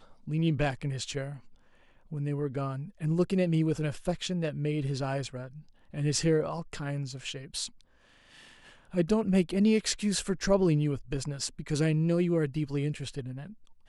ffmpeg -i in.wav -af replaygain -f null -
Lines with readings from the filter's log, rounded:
track_gain = +10.3 dB
track_peak = 0.149